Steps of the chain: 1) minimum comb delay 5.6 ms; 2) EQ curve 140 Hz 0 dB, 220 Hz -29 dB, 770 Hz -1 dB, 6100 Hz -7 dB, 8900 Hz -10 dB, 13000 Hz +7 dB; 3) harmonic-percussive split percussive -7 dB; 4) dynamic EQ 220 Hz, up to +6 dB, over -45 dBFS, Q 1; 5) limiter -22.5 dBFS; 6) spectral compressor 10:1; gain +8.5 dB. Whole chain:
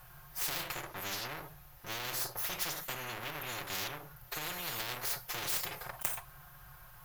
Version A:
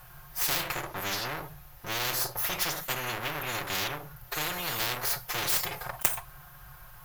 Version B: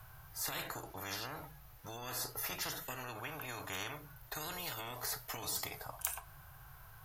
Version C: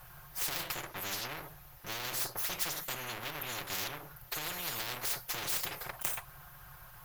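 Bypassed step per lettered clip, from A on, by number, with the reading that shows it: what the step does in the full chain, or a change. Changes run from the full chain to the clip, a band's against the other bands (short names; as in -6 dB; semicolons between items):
5, crest factor change +2.5 dB; 1, 4 kHz band -2.5 dB; 3, loudness change +1.0 LU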